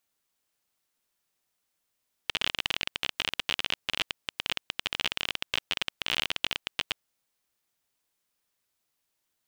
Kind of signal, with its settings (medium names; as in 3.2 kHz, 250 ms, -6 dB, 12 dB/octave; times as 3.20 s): random clicks 28 per s -10 dBFS 4.71 s